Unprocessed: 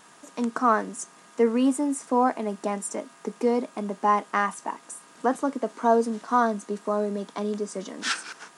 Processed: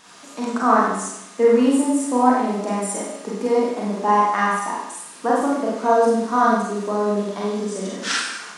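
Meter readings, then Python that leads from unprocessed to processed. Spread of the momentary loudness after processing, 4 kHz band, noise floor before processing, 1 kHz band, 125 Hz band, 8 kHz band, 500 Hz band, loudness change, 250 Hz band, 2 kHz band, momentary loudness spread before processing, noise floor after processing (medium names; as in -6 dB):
10 LU, +6.5 dB, -53 dBFS, +6.0 dB, no reading, +6.5 dB, +6.5 dB, +6.0 dB, +6.0 dB, +6.0 dB, 13 LU, -42 dBFS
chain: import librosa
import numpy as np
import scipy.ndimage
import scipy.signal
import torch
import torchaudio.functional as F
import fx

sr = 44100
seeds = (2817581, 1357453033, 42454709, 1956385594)

y = fx.dmg_noise_band(x, sr, seeds[0], low_hz=860.0, high_hz=6900.0, level_db=-56.0)
y = fx.rev_schroeder(y, sr, rt60_s=0.8, comb_ms=32, drr_db=-5.0)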